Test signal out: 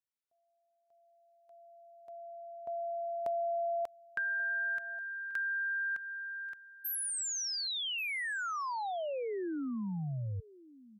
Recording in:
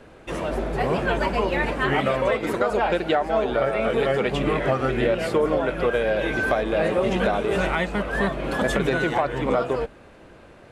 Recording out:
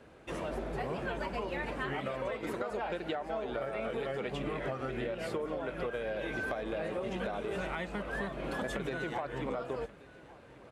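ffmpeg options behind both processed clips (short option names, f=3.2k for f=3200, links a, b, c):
-filter_complex "[0:a]highpass=44,acompressor=threshold=-24dB:ratio=6,asplit=2[a][b];[b]aecho=0:1:1135:0.0944[c];[a][c]amix=inputs=2:normalize=0,volume=-8.5dB"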